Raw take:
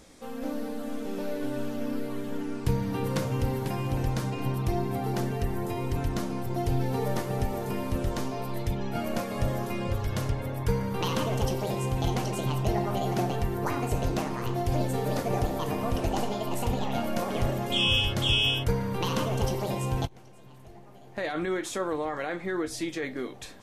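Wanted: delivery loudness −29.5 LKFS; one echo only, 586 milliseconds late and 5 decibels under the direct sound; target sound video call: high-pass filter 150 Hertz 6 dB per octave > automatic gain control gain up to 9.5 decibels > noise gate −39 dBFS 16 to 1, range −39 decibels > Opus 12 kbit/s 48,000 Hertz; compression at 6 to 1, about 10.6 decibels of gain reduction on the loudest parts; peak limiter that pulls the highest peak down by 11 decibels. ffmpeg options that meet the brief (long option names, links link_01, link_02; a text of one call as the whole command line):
ffmpeg -i in.wav -af "acompressor=threshold=-33dB:ratio=6,alimiter=level_in=8dB:limit=-24dB:level=0:latency=1,volume=-8dB,highpass=frequency=150:poles=1,aecho=1:1:586:0.562,dynaudnorm=maxgain=9.5dB,agate=range=-39dB:threshold=-39dB:ratio=16,volume=7dB" -ar 48000 -c:a libopus -b:a 12k out.opus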